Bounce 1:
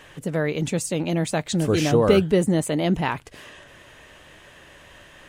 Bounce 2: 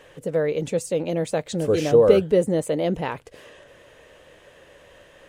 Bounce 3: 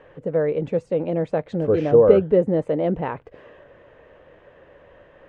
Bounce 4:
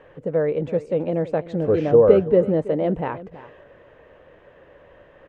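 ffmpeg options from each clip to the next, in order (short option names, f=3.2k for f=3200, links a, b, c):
-af "equalizer=f=500:w=2.4:g=12.5,volume=-5.5dB"
-af "lowpass=1.6k,volume=1.5dB"
-af "aecho=1:1:330:0.15"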